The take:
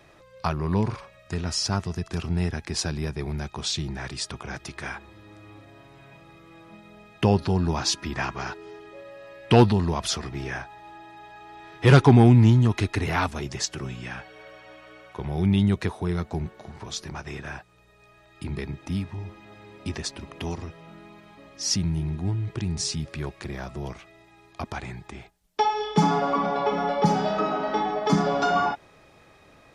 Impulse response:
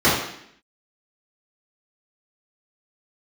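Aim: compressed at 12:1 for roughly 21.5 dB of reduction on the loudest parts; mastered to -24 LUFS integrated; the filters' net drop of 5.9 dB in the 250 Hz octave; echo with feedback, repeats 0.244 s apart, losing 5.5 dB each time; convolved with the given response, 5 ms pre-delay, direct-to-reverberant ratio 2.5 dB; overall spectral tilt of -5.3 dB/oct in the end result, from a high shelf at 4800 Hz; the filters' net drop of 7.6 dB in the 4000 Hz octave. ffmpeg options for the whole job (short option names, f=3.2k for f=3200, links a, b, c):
-filter_complex "[0:a]equalizer=f=250:t=o:g=-8.5,equalizer=f=4k:t=o:g=-7,highshelf=f=4.8k:g=-5.5,acompressor=threshold=-35dB:ratio=12,aecho=1:1:244|488|732|976|1220|1464|1708:0.531|0.281|0.149|0.079|0.0419|0.0222|0.0118,asplit=2[a][b];[1:a]atrim=start_sample=2205,adelay=5[c];[b][c]afir=irnorm=-1:irlink=0,volume=-25dB[d];[a][d]amix=inputs=2:normalize=0,volume=12.5dB"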